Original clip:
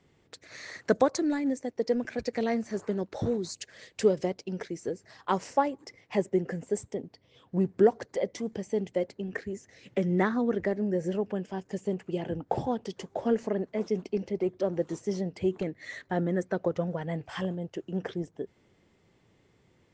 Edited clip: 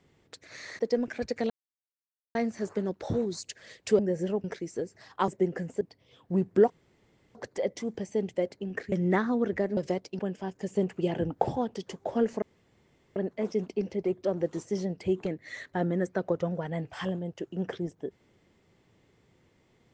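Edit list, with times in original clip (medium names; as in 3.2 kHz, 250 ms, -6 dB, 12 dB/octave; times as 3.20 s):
0.79–1.76 s: delete
2.47 s: insert silence 0.85 s
4.11–4.53 s: swap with 10.84–11.29 s
5.37–6.21 s: delete
6.74–7.04 s: delete
7.93 s: insert room tone 0.65 s
9.50–9.99 s: delete
11.80–12.52 s: gain +3.5 dB
13.52 s: insert room tone 0.74 s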